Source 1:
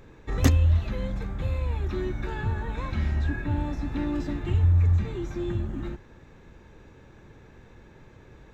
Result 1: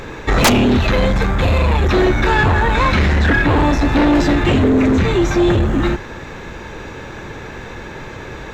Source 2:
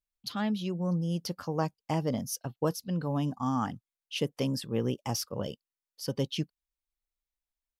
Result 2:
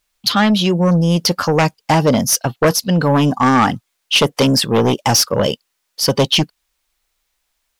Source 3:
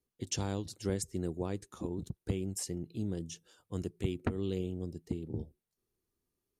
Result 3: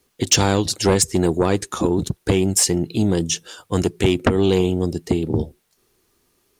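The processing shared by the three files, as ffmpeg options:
-filter_complex "[0:a]aeval=exprs='0.531*sin(PI/2*7.94*val(0)/0.531)':c=same,asplit=2[s0][s1];[s1]highpass=f=720:p=1,volume=2.24,asoftclip=type=tanh:threshold=0.562[s2];[s0][s2]amix=inputs=2:normalize=0,lowpass=f=8000:p=1,volume=0.501"

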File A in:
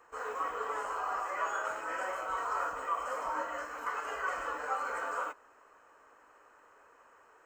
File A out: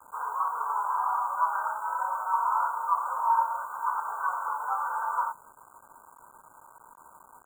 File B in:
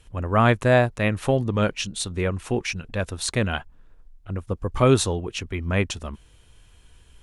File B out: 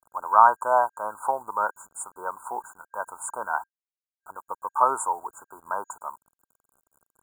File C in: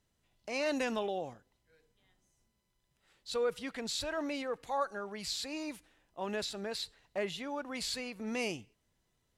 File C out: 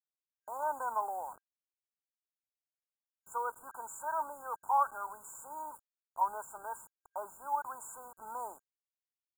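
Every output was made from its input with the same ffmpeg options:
-af "highpass=f=930:t=q:w=9,acrusher=bits=7:mix=0:aa=0.000001,afftfilt=real='re*(1-between(b*sr/4096,1600,6800))':imag='im*(1-between(b*sr/4096,1600,6800))':win_size=4096:overlap=0.75,volume=0.668"

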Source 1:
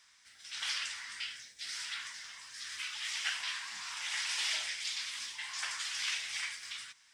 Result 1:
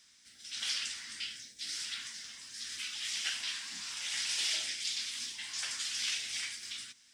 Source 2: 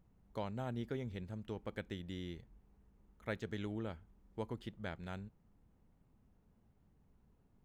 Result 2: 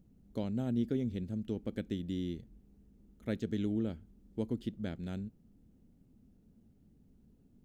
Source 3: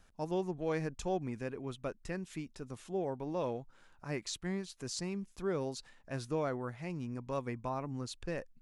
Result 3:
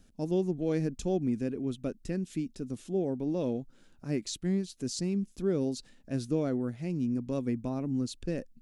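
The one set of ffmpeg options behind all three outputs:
-af "equalizer=f=250:t=o:w=1:g=9,equalizer=f=1000:t=o:w=1:g=-12,equalizer=f=2000:t=o:w=1:g=-5,volume=1.5"

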